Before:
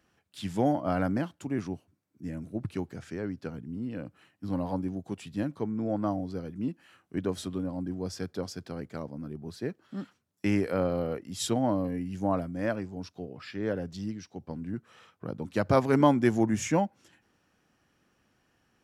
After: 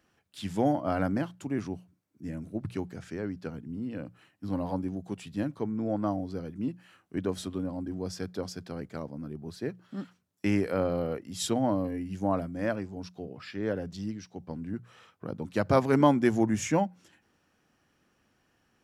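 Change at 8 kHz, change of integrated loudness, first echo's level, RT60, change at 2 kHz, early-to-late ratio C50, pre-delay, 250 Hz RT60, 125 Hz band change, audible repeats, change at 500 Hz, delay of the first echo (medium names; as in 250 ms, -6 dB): 0.0 dB, 0.0 dB, no echo, no reverb, 0.0 dB, no reverb, no reverb, no reverb, -0.5 dB, no echo, 0.0 dB, no echo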